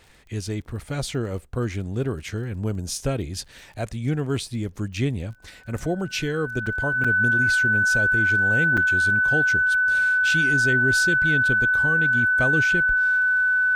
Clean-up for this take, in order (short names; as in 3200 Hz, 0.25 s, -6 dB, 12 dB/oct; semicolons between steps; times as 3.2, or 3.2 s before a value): de-click; notch 1500 Hz, Q 30; interpolate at 3.48/6.66/7.04/8.77, 5.6 ms